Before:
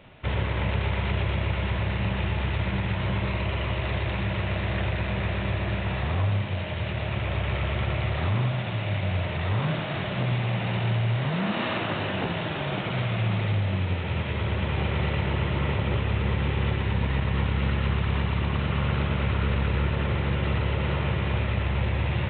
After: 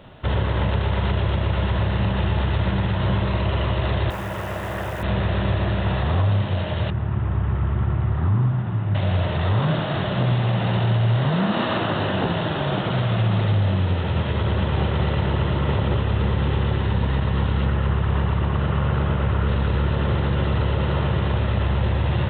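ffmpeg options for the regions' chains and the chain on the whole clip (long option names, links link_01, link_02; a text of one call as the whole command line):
ffmpeg -i in.wav -filter_complex "[0:a]asettb=1/sr,asplit=3[link_01][link_02][link_03];[link_01]atrim=end=4.104[link_04];[link_02]atrim=start=4.1:end=5.03,asetpts=PTS-STARTPTS,afade=type=in:duration=0.004:curve=qsin,afade=type=out:start_time=0.926:duration=0.004:curve=qsin,acrossover=split=2600[link_05][link_06];[link_06]acompressor=threshold=-57dB:ratio=4:attack=1:release=60[link_07];[link_05][link_07]amix=inputs=2:normalize=0,lowshelf=frequency=290:gain=-11,acrusher=bits=9:dc=4:mix=0:aa=0.000001[link_08];[link_03]atrim=start=5.026[link_09];[link_04][link_08]acrossfade=duration=0.004:curve1=hsin:curve2=qsin[link_10];[link_10][link_09]acrossfade=duration=0.004:curve1=qsin:curve2=hsin,asettb=1/sr,asplit=3[link_11][link_12][link_13];[link_11]atrim=end=6.904[link_14];[link_12]atrim=start=6.9:end=8.95,asetpts=PTS-STARTPTS,afade=type=in:duration=0.004:curve=qsin,afade=type=out:start_time=2.046:duration=0.004:curve=qsin,lowpass=1200,equalizer=frequency=580:width=1.7:gain=-13.5[link_15];[link_13]atrim=start=8.946[link_16];[link_14][link_15]acrossfade=duration=0.004:curve1=hsin:curve2=qsin[link_17];[link_17][link_16]acrossfade=duration=0.004:curve1=qsin:curve2=hsin,asettb=1/sr,asplit=3[link_18][link_19][link_20];[link_18]atrim=end=17.654[link_21];[link_19]atrim=start=17.65:end=19.47,asetpts=PTS-STARTPTS,afade=type=in:duration=0.004:curve=qsin,afade=type=out:start_time=1.816:duration=0.004:curve=qsin,lowpass=2800,equalizer=frequency=240:width_type=o:width=0.31:gain=-5[link_22];[link_20]atrim=start=19.466[link_23];[link_21][link_22]acrossfade=duration=0.004:curve1=hsin:curve2=qsin[link_24];[link_24][link_23]acrossfade=duration=0.004:curve1=qsin:curve2=hsin,alimiter=limit=-18.5dB:level=0:latency=1,equalizer=frequency=2300:width=3.3:gain=-11,volume=6.5dB" out.wav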